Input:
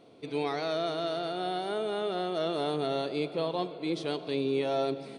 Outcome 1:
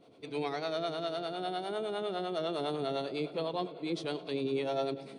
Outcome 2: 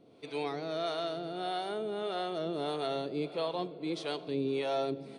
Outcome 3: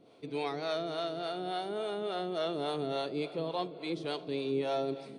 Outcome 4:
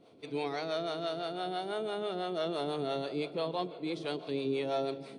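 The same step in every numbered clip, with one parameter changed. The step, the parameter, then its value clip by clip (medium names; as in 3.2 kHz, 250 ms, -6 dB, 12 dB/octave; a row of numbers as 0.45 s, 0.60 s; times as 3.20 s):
harmonic tremolo, rate: 9.9 Hz, 1.6 Hz, 3.5 Hz, 6 Hz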